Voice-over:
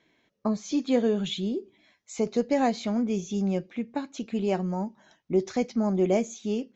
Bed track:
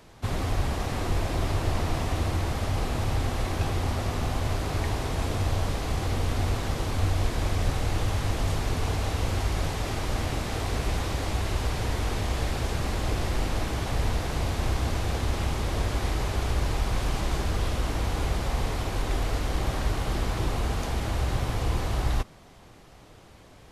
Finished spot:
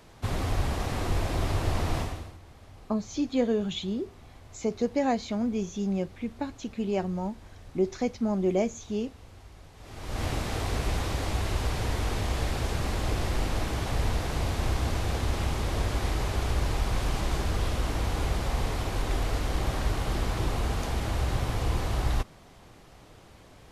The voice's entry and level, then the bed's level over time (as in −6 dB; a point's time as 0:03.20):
2.45 s, −2.0 dB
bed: 0:02.00 −1 dB
0:02.39 −22.5 dB
0:09.72 −22.5 dB
0:10.24 −1 dB